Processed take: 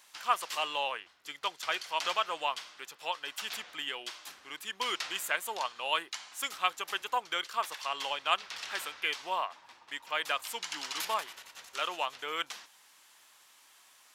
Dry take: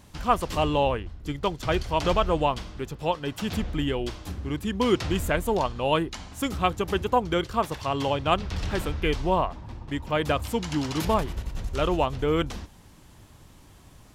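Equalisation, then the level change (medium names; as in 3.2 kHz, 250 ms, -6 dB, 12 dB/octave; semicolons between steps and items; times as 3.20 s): high-pass 1.3 kHz 12 dB/octave; 0.0 dB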